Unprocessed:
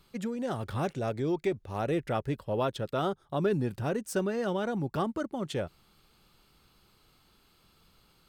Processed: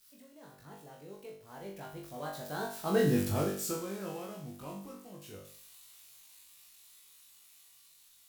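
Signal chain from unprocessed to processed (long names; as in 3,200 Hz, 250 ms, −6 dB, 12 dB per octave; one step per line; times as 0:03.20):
spike at every zero crossing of −29.5 dBFS
source passing by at 0:03.13, 51 m/s, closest 10 metres
flutter between parallel walls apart 3.5 metres, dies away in 0.52 s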